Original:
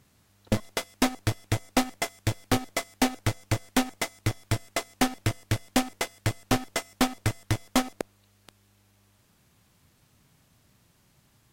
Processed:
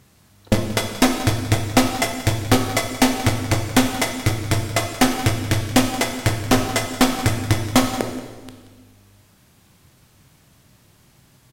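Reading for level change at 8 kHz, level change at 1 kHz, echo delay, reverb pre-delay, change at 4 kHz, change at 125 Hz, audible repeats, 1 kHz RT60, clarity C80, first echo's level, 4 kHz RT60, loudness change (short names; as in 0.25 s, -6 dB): +9.0 dB, +8.5 dB, 0.179 s, 16 ms, +9.0 dB, +9.0 dB, 1, 1.3 s, 7.5 dB, -15.5 dB, 1.2 s, +9.0 dB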